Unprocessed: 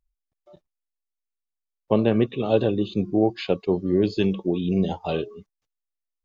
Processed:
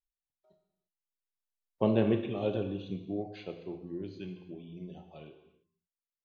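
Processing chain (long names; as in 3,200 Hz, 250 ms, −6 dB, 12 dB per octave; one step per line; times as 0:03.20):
source passing by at 0:01.87, 21 m/s, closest 9.7 metres
reverb whose tail is shaped and stops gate 370 ms falling, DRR 5 dB
level −7.5 dB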